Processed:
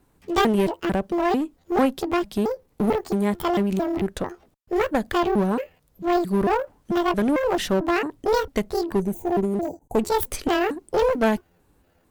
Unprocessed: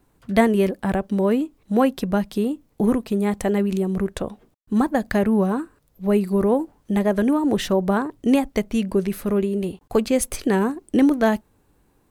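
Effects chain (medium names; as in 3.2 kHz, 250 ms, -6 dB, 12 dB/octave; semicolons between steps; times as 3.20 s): pitch shift switched off and on +9.5 st, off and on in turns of 223 ms; time-frequency box 8.99–9.99 s, 960–5900 Hz -19 dB; one-sided clip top -23 dBFS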